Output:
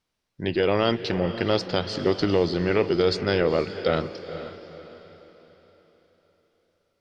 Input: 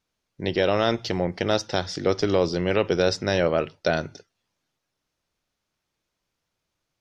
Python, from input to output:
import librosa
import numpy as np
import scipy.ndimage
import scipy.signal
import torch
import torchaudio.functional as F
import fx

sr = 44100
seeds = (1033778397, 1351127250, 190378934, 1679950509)

y = fx.formant_shift(x, sr, semitones=-2)
y = fx.echo_diffused(y, sr, ms=470, feedback_pct=42, wet_db=-11.5)